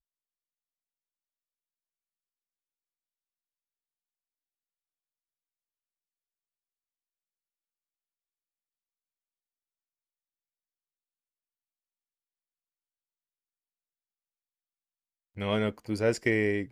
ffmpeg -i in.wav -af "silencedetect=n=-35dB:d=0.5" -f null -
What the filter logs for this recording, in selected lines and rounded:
silence_start: 0.00
silence_end: 15.38 | silence_duration: 15.38